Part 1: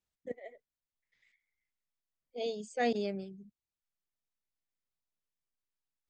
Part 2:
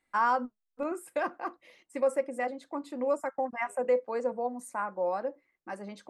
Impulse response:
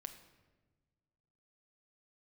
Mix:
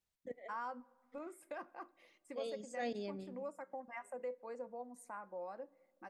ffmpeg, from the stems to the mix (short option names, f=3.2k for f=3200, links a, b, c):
-filter_complex "[0:a]volume=-2dB,asplit=2[a][b];[b]volume=-10dB[c];[1:a]adelay=350,volume=-11dB,asplit=2[d][e];[e]volume=-10dB[f];[2:a]atrim=start_sample=2205[g];[c][f]amix=inputs=2:normalize=0[h];[h][g]afir=irnorm=-1:irlink=0[i];[a][d][i]amix=inputs=3:normalize=0,acompressor=threshold=-52dB:ratio=1.5"